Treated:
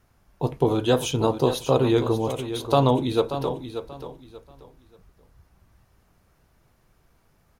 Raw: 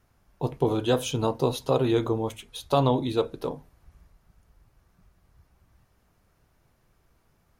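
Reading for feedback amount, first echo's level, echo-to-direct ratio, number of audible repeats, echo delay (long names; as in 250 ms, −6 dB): 26%, −10.5 dB, −10.0 dB, 3, 584 ms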